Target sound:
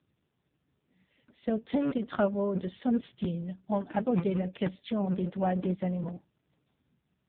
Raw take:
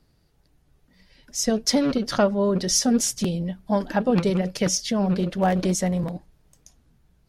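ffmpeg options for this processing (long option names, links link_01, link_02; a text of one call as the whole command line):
ffmpeg -i in.wav -filter_complex "[0:a]asettb=1/sr,asplit=3[link_01][link_02][link_03];[link_01]atrim=end=4.974[link_04];[link_02]atrim=start=4.97:end=6.14,asetpts=PTS-STARTPTS,afade=type=in:duration=0.004:curve=qsin,afade=type=out:start_time=1.166:duration=0.004:curve=qsin,lowpass=frequency=3000:poles=1[link_05];[link_03]atrim=start=6.136[link_06];[link_04][link_05]acrossfade=duration=0.004:curve1=hsin:curve2=qsin[link_07];[link_07][link_06]acrossfade=duration=0.004:curve1=qsin:curve2=hsin,volume=-6.5dB" -ar 8000 -c:a libopencore_amrnb -b:a 5900 out.amr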